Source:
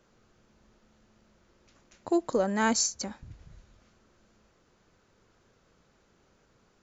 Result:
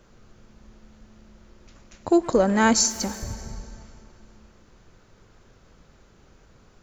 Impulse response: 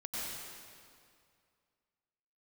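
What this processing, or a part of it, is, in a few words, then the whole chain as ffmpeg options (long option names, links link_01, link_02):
saturated reverb return: -filter_complex "[0:a]lowshelf=frequency=90:gain=11.5,asplit=2[link_01][link_02];[1:a]atrim=start_sample=2205[link_03];[link_02][link_03]afir=irnorm=-1:irlink=0,asoftclip=type=tanh:threshold=-30.5dB,volume=-9.5dB[link_04];[link_01][link_04]amix=inputs=2:normalize=0,volume=6dB"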